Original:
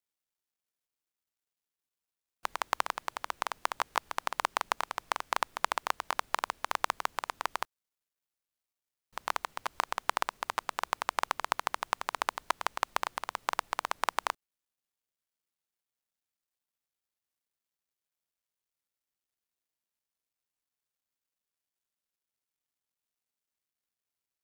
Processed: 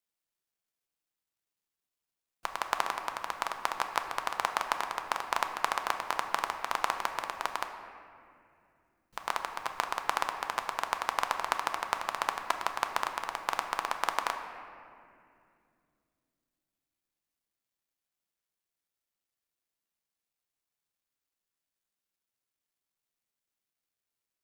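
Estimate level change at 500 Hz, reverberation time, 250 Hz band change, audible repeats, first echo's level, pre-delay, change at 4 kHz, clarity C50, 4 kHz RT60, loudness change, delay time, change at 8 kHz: +1.5 dB, 2.5 s, +2.0 dB, no echo, no echo, 6 ms, +0.5 dB, 7.5 dB, 1.5 s, +1.0 dB, no echo, +0.5 dB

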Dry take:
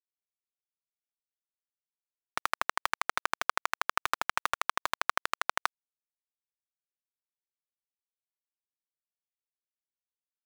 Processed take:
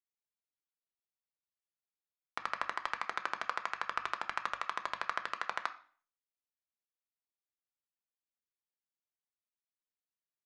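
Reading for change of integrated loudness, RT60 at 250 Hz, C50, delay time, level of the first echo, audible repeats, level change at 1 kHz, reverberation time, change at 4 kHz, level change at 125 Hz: -6.0 dB, 0.55 s, 14.0 dB, no echo, no echo, no echo, -5.5 dB, 0.45 s, -8.0 dB, no reading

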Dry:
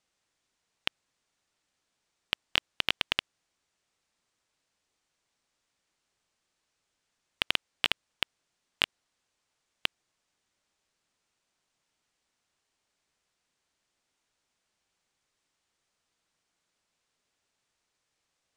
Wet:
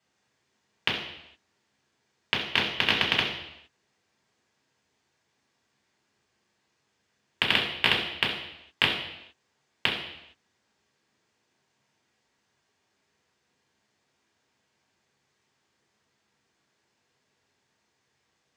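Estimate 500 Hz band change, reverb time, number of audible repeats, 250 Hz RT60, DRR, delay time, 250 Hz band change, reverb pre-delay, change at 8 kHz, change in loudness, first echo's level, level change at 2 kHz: +9.5 dB, 0.80 s, no echo, 0.80 s, -4.5 dB, no echo, +11.5 dB, 3 ms, +1.0 dB, +5.5 dB, no echo, +7.0 dB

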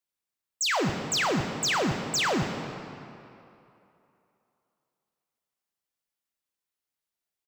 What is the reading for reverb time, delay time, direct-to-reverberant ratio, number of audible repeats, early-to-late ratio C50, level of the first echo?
2.8 s, 116 ms, 4.0 dB, 1, 5.5 dB, -16.0 dB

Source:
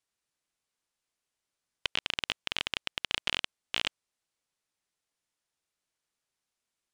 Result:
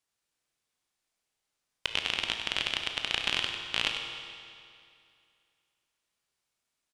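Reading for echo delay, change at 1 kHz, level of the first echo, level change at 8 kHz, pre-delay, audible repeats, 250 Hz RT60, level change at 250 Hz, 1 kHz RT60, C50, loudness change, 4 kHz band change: 98 ms, +3.0 dB, -8.5 dB, +2.5 dB, 18 ms, 1, 2.4 s, +2.5 dB, 2.4 s, 3.5 dB, +2.5 dB, +3.0 dB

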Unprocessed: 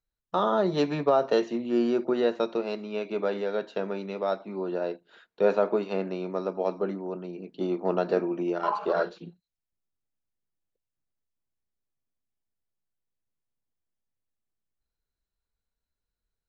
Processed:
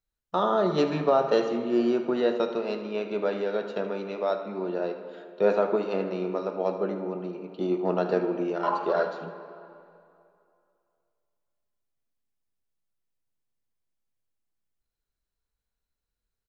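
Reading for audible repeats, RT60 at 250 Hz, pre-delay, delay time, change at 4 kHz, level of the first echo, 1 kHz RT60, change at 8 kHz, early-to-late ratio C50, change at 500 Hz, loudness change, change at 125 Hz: 1, 2.3 s, 12 ms, 77 ms, +0.5 dB, -13.5 dB, 2.6 s, no reading, 7.5 dB, +1.0 dB, +1.0 dB, +1.0 dB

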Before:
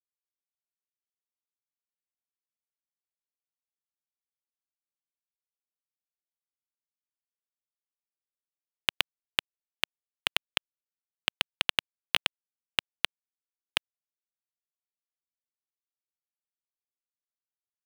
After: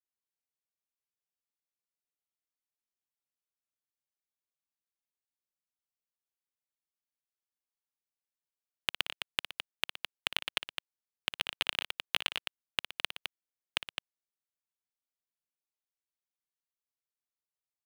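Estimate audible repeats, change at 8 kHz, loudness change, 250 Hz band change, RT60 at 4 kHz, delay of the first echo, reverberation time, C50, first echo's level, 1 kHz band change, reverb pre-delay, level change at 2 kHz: 3, -4.0 dB, -4.5 dB, -4.0 dB, no reverb, 58 ms, no reverb, no reverb, -12.0 dB, -4.0 dB, no reverb, -4.0 dB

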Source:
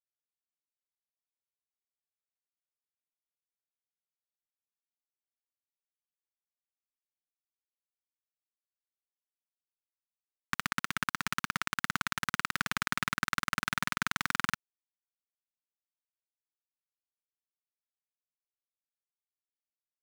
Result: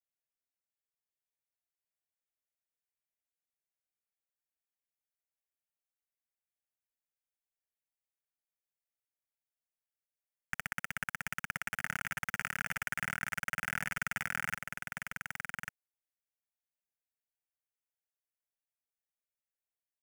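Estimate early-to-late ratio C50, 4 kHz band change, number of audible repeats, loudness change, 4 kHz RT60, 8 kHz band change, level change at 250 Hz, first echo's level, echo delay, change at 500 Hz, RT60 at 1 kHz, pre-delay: no reverb, -10.0 dB, 1, -4.5 dB, no reverb, -4.0 dB, -8.0 dB, -4.5 dB, 1144 ms, -3.0 dB, no reverb, no reverb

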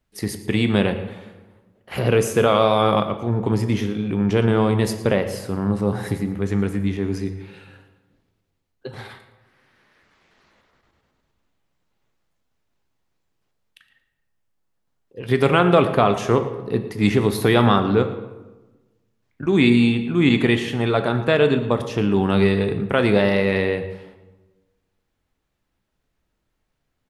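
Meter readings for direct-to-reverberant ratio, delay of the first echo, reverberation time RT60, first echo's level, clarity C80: 8.0 dB, 114 ms, 1.2 s, -16.5 dB, 11.0 dB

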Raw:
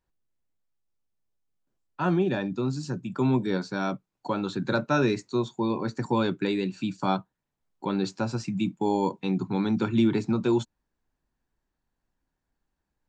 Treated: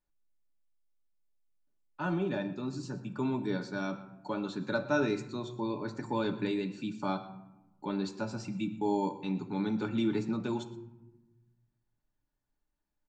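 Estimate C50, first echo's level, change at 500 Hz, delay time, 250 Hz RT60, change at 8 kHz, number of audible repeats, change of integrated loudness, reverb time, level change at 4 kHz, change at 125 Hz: 12.0 dB, -18.0 dB, -6.5 dB, 120 ms, 1.5 s, no reading, 1, -6.5 dB, 0.95 s, -6.5 dB, -8.5 dB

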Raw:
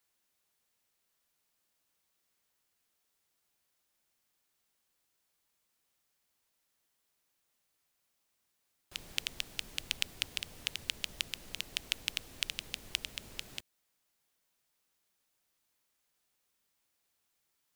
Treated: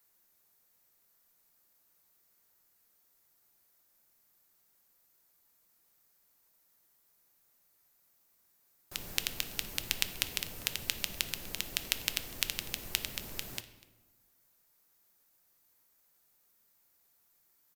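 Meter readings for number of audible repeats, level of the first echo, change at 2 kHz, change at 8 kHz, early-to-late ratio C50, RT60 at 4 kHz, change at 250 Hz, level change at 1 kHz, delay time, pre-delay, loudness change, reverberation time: 1, -22.0 dB, +2.0 dB, +6.0 dB, 12.5 dB, 0.70 s, +6.0 dB, +5.5 dB, 246 ms, 5 ms, +3.0 dB, 1.2 s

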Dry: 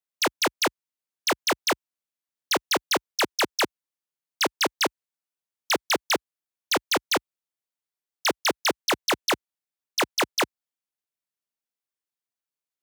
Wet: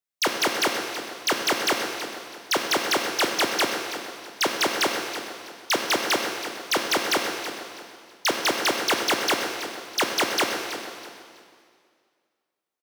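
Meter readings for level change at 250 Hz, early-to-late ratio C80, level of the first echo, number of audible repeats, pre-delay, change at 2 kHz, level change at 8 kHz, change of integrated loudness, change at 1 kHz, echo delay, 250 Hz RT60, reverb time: +2.0 dB, 4.0 dB, -11.5 dB, 3, 6 ms, +2.5 dB, +2.0 dB, +1.0 dB, +2.0 dB, 326 ms, 2.2 s, 2.1 s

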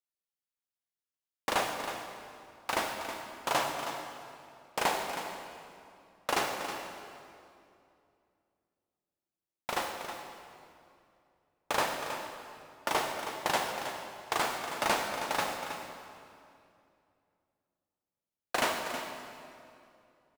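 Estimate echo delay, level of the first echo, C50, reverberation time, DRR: 319 ms, -10.0 dB, 3.5 dB, 2.6 s, 2.5 dB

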